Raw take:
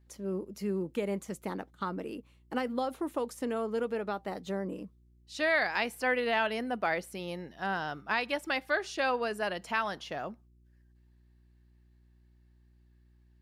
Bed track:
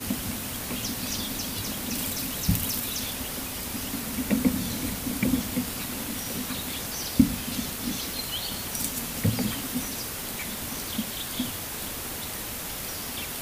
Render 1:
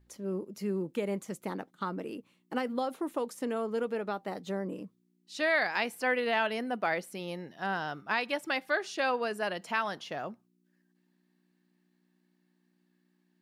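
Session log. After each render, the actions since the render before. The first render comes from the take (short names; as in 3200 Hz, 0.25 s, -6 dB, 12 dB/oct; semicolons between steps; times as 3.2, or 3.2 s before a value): de-hum 60 Hz, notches 2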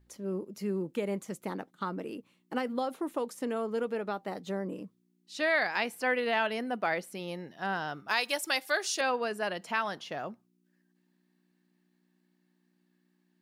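8.08–9.01 tone controls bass -12 dB, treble +15 dB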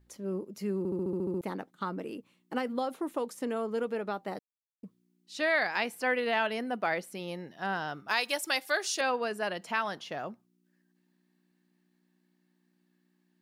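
0.78 stutter in place 0.07 s, 9 plays; 4.39–4.83 mute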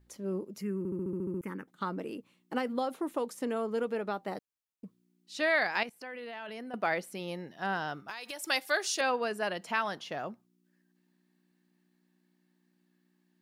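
0.61–1.68 fixed phaser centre 1700 Hz, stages 4; 5.83–6.74 level quantiser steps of 21 dB; 7.99–8.44 compressor 12:1, threshold -36 dBFS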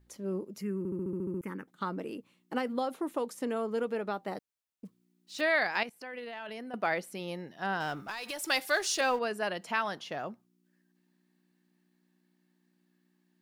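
4.85–5.42 block floating point 5-bit; 6.13–6.6 transient shaper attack +11 dB, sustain -2 dB; 7.8–9.19 G.711 law mismatch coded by mu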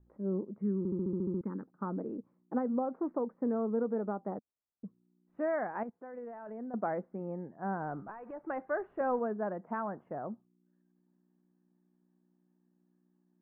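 Bessel low-pass 840 Hz, order 8; dynamic EQ 220 Hz, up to +5 dB, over -49 dBFS, Q 3.3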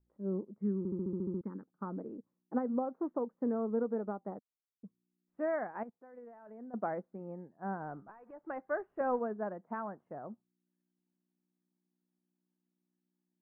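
upward expander 1.5:1, over -53 dBFS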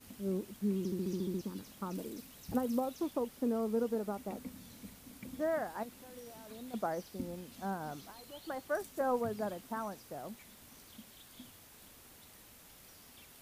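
add bed track -23 dB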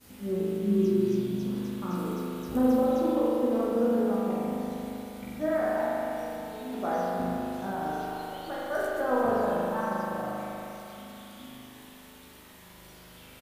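doubler 16 ms -3.5 dB; spring tank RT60 3.3 s, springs 39 ms, chirp 30 ms, DRR -7 dB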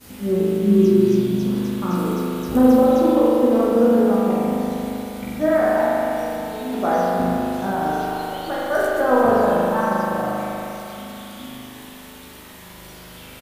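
gain +10 dB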